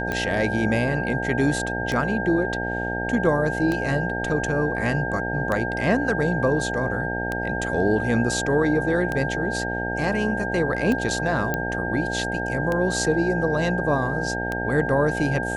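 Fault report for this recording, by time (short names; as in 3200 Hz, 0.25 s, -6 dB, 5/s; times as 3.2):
buzz 60 Hz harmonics 15 -29 dBFS
tick 33 1/3 rpm -13 dBFS
tone 1600 Hz -28 dBFS
11.54 pop -10 dBFS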